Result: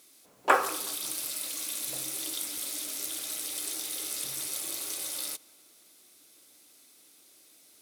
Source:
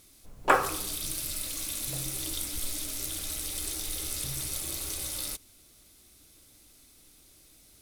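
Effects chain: HPF 320 Hz 12 dB/oct; on a send: tape echo 0.185 s, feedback 68%, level -23 dB

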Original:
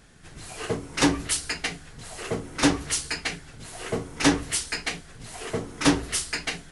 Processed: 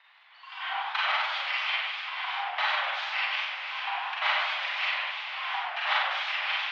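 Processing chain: local time reversal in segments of 86 ms; upward compressor, threshold -39 dBFS; on a send: diffused feedback echo 0.54 s, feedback 41%, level -11 dB; on the sum: spectral noise reduction 10 dB; in parallel at +1 dB: compressor, threshold -32 dBFS, peak gain reduction 16.5 dB; on the sum: Schroeder reverb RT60 0.72 s, combs from 32 ms, DRR -4.5 dB; mistuned SSB +330 Hz 540–3300 Hz; warbling echo 98 ms, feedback 66%, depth 175 cents, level -6.5 dB; gain -6.5 dB

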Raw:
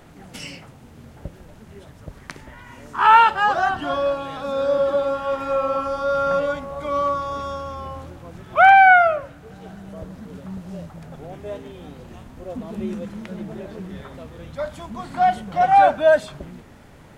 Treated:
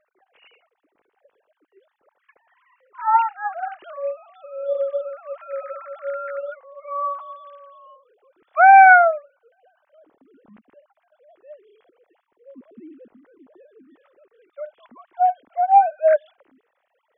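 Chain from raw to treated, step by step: sine-wave speech; 12.13–14.32 air absorption 260 m; gain -1 dB

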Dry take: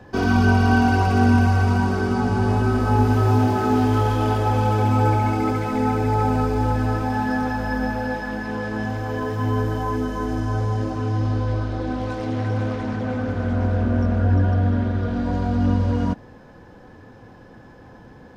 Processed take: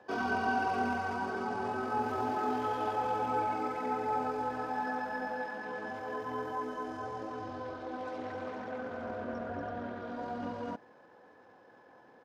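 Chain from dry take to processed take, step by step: HPF 590 Hz 12 dB/oct; tempo 1.5×; tilt -2.5 dB/oct; gain -7.5 dB

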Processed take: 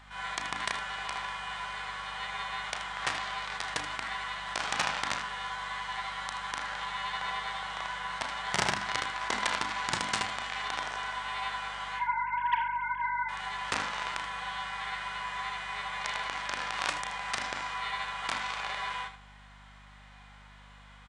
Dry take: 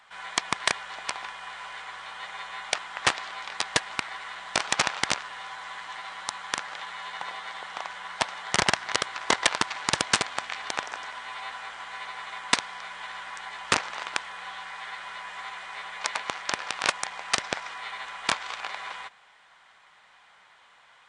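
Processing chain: 11.99–13.29 sine-wave speech; notches 50/100/150/200/250/300 Hz; harmonic-percussive split percussive -15 dB; in parallel at -10 dB: soft clip -24.5 dBFS, distortion -15 dB; on the sum: hum 50 Hz, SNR 21 dB; on a send: early reflections 34 ms -11 dB, 79 ms -11.5 dB; on the sum: gain +2 dB

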